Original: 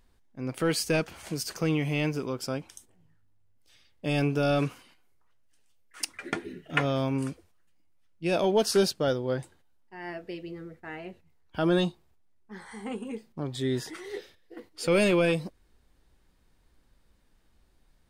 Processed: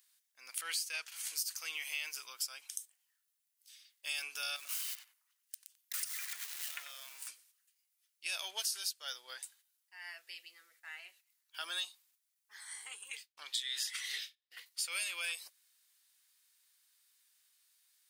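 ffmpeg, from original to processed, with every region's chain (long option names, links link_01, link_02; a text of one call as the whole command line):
ffmpeg -i in.wav -filter_complex "[0:a]asettb=1/sr,asplit=3[link_01][link_02][link_03];[link_01]atrim=end=0.614[link_04];[link_02]atrim=start=0.61:end=1.12,asetpts=PTS-STARTPTS,afade=type=in:duration=0.004:curve=qsin,afade=type=out:start_time=0.506:duration=0.004:curve=qsin,agate=range=-33dB:threshold=-42dB:ratio=3:release=100:detection=peak,highshelf=frequency=6800:gain=-8[link_05];[link_03]atrim=start=1.116[link_06];[link_04][link_05]acrossfade=duration=0.004:curve1=hsin:curve2=qsin[link_07];[link_07][link_06]acrossfade=duration=0.004:curve1=qsin:curve2=hsin,asettb=1/sr,asplit=3[link_08][link_09][link_10];[link_08]atrim=end=4.564[link_11];[link_09]atrim=start=4.56:end=7.28,asetpts=PTS-STARTPTS,afade=type=in:duration=0.004:curve=qsin,afade=type=out:start_time=2.716:duration=0.004:curve=qsin,aeval=exprs='val(0)+0.5*0.0224*sgn(val(0))':channel_layout=same,acompressor=threshold=-34dB:ratio=6:attack=3.2:release=140:knee=1:detection=peak,asplit=2[link_12][link_13];[link_13]adelay=91,lowpass=frequency=1600:poles=1,volume=-6.5dB,asplit=2[link_14][link_15];[link_15]adelay=91,lowpass=frequency=1600:poles=1,volume=0.26,asplit=2[link_16][link_17];[link_17]adelay=91,lowpass=frequency=1600:poles=1,volume=0.26[link_18];[link_12][link_14][link_16][link_18]amix=inputs=4:normalize=0,atrim=end_sample=119952[link_19];[link_10]atrim=start=7.276[link_20];[link_11][link_19]acrossfade=duration=0.004:curve1=hsin:curve2=qsin[link_21];[link_21][link_20]acrossfade=duration=0.004:curve1=qsin:curve2=hsin,asettb=1/sr,asplit=3[link_22][link_23][link_24];[link_22]atrim=end=13.114[link_25];[link_23]atrim=start=13.11:end=14.66,asetpts=PTS-STARTPTS,afade=type=in:duration=0.004:curve=qsin,afade=type=out:start_time=1.546:duration=0.004:curve=qsin,agate=range=-33dB:threshold=-47dB:ratio=3:release=100:detection=peak,equalizer=frequency=2900:width_type=o:width=2:gain=11.5[link_26];[link_24]atrim=start=14.656[link_27];[link_25][link_26]acrossfade=duration=0.004:curve1=hsin:curve2=qsin[link_28];[link_28][link_27]acrossfade=duration=0.004:curve1=qsin:curve2=hsin,highpass=1300,aderivative,acompressor=threshold=-42dB:ratio=8,volume=8dB" out.wav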